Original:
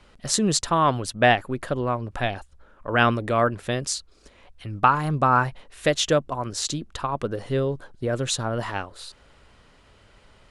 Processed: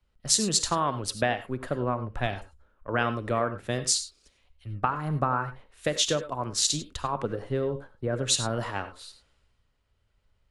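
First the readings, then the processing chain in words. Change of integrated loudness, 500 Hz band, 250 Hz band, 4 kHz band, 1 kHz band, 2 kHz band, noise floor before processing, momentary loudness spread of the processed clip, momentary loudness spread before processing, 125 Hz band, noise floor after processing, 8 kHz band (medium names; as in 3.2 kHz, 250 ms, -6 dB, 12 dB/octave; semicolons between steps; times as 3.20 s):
-4.0 dB, -5.5 dB, -5.5 dB, 0.0 dB, -7.0 dB, -7.5 dB, -56 dBFS, 12 LU, 11 LU, -5.0 dB, -71 dBFS, +2.0 dB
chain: compression 16:1, threshold -22 dBFS, peak gain reduction 11.5 dB; gated-style reverb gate 120 ms rising, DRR 9.5 dB; three bands expanded up and down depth 70%; trim -1.5 dB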